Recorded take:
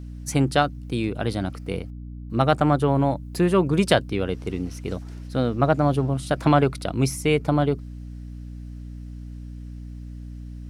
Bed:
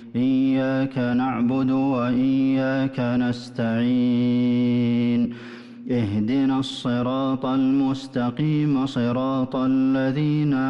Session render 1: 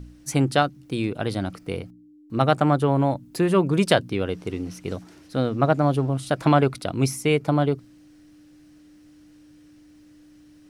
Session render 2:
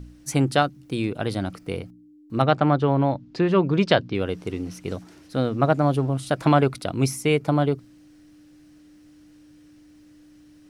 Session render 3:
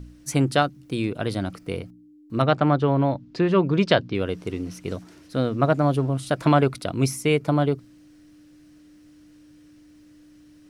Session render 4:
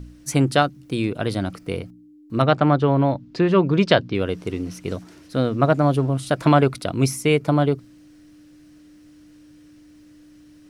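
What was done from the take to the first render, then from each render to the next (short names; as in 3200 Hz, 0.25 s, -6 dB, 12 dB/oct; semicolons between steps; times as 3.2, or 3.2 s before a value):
de-hum 60 Hz, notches 4
2.42–4.15 LPF 5200 Hz 24 dB/oct
notch 800 Hz, Q 12
gain +2.5 dB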